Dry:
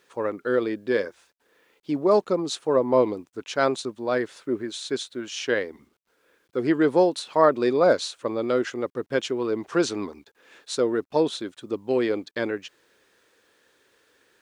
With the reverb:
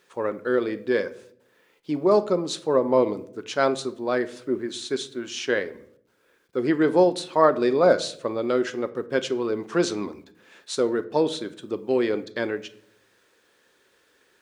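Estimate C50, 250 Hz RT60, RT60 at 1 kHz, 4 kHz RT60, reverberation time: 16.5 dB, 0.95 s, 0.55 s, 0.40 s, 0.65 s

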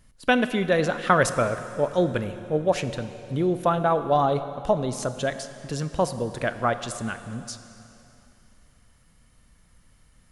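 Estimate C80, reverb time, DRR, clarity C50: 12.0 dB, 3.0 s, 10.5 dB, 11.5 dB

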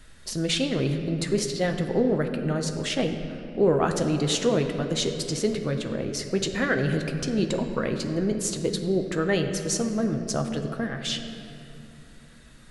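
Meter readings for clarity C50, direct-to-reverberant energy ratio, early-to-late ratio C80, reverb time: 7.0 dB, 4.5 dB, 8.0 dB, 2.8 s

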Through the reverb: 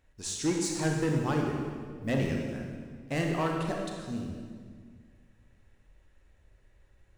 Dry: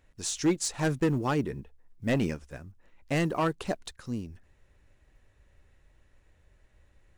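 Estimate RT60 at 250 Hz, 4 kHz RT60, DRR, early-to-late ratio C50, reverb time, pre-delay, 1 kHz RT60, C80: 2.2 s, 1.5 s, 0.0 dB, 1.5 dB, 1.8 s, 28 ms, 1.7 s, 3.5 dB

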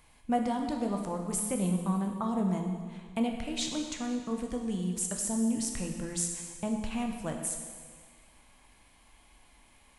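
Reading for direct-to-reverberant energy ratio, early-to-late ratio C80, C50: 2.5 dB, 6.0 dB, 4.5 dB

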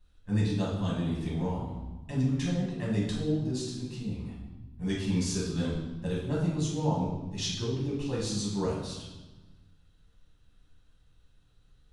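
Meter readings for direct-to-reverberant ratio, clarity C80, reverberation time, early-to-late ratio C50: -6.0 dB, 5.0 dB, 1.2 s, 1.5 dB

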